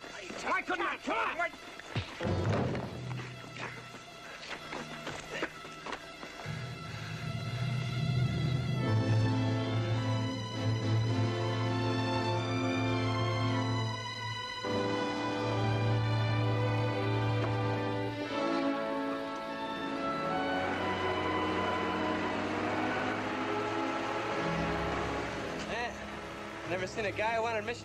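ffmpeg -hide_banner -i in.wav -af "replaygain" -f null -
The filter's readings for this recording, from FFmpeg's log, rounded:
track_gain = +16.2 dB
track_peak = 0.076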